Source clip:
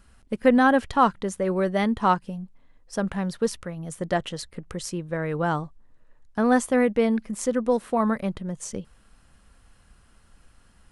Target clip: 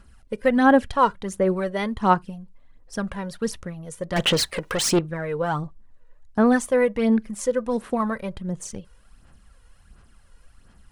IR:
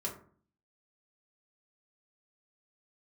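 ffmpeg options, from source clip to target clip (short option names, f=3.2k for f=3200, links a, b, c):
-filter_complex "[0:a]asettb=1/sr,asplit=3[a][b][c];[a]atrim=end=4.164[d];[b]atrim=start=4.16:end=4.99,asetpts=PTS-STARTPTS,afade=t=in:d=0.004:c=qsin,afade=t=out:st=0.826:d=0.004:c=qsin,asplit=2[e][f];[f]highpass=f=720:p=1,volume=29dB,asoftclip=type=tanh:threshold=-13.5dB[g];[e][g]amix=inputs=2:normalize=0,lowpass=f=7.2k:p=1,volume=-6dB[h];[c]atrim=start=4.986[i];[d][h]acrossfade=d=0.004:c1=hsin:c2=qsin[j];[j][i]acrossfade=d=0.004:c1=qsin:c2=hsin,aphaser=in_gain=1:out_gain=1:delay=2.1:decay=0.53:speed=1.4:type=sinusoidal,asplit=2[k][l];[1:a]atrim=start_sample=2205,atrim=end_sample=3528[m];[l][m]afir=irnorm=-1:irlink=0,volume=-23.5dB[n];[k][n]amix=inputs=2:normalize=0,volume=-2dB"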